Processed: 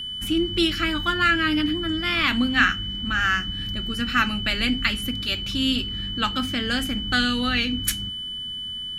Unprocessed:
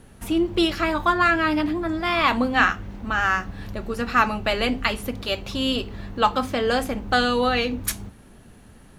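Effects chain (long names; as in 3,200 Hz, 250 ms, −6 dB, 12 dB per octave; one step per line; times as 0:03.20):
flat-topped bell 670 Hz −14.5 dB
steady tone 3,000 Hz −31 dBFS
level +1.5 dB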